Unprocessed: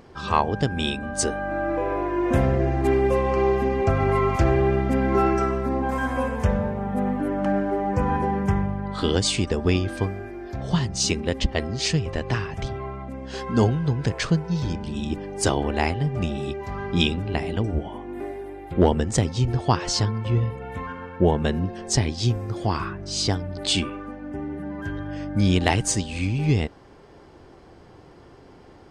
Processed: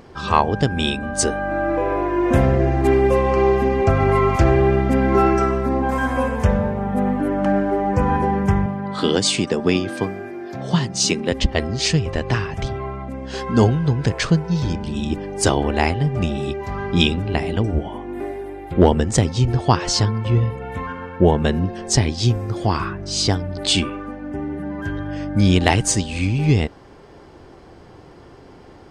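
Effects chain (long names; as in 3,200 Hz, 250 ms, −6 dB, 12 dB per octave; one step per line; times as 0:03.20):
0:08.66–0:11.32: high-pass filter 130 Hz 24 dB per octave
level +4.5 dB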